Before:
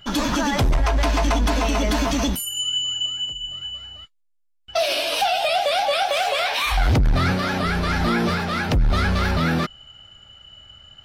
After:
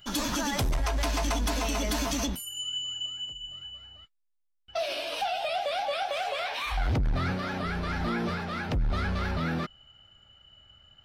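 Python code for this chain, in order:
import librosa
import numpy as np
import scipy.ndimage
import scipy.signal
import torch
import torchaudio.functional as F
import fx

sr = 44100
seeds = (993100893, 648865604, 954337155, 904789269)

y = fx.high_shelf(x, sr, hz=5200.0, db=fx.steps((0.0, 11.5), (2.25, -2.5), (3.62, -8.0)))
y = y * 10.0 ** (-9.0 / 20.0)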